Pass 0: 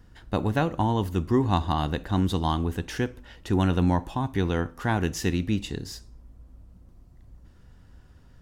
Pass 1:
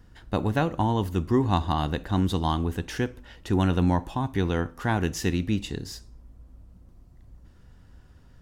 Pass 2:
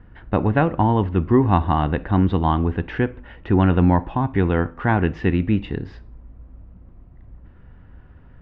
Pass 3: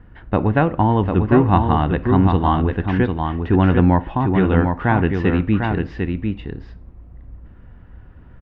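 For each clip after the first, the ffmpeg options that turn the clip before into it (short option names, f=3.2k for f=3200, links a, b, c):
-af anull
-af "lowpass=f=2.5k:w=0.5412,lowpass=f=2.5k:w=1.3066,volume=6.5dB"
-af "aecho=1:1:749:0.562,volume=1.5dB"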